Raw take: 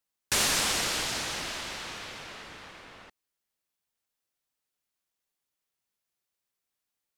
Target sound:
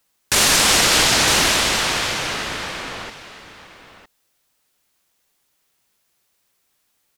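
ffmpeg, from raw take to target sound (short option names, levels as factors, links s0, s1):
-filter_complex "[0:a]asplit=2[s0][s1];[s1]aecho=0:1:959:0.211[s2];[s0][s2]amix=inputs=2:normalize=0,alimiter=level_in=12.6:limit=0.891:release=50:level=0:latency=1,volume=0.596"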